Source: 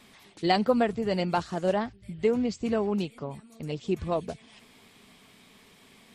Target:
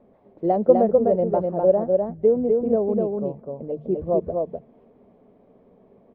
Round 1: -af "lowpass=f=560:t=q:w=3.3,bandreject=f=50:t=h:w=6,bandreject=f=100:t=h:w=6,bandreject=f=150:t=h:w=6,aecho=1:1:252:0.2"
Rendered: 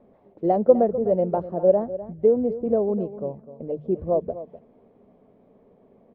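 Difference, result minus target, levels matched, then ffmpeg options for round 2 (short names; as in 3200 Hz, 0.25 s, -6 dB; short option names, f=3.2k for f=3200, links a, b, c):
echo-to-direct -11 dB
-af "lowpass=f=560:t=q:w=3.3,bandreject=f=50:t=h:w=6,bandreject=f=100:t=h:w=6,bandreject=f=150:t=h:w=6,aecho=1:1:252:0.708"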